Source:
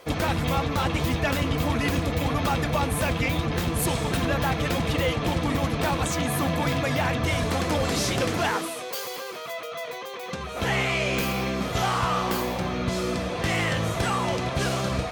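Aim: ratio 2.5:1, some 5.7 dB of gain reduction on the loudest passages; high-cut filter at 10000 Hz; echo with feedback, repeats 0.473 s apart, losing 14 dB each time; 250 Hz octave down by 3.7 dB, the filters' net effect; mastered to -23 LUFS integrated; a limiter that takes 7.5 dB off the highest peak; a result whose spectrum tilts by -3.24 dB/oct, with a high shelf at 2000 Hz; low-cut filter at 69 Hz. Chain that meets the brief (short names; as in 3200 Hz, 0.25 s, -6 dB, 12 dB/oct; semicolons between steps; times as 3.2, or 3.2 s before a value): HPF 69 Hz; LPF 10000 Hz; bell 250 Hz -5.5 dB; high shelf 2000 Hz +7.5 dB; compressor 2.5:1, threshold -28 dBFS; limiter -20 dBFS; feedback echo 0.473 s, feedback 20%, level -14 dB; gain +6.5 dB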